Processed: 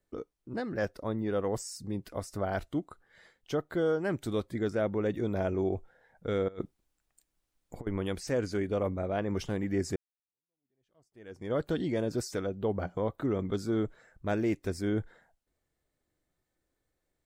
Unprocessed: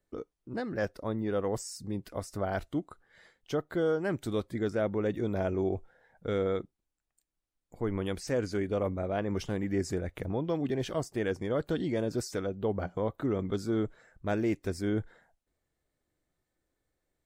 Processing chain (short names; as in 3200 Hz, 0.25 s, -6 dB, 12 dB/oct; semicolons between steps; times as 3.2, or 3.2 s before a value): 6.48–7.87 negative-ratio compressor -38 dBFS, ratio -0.5; 9.96–11.53 fade in exponential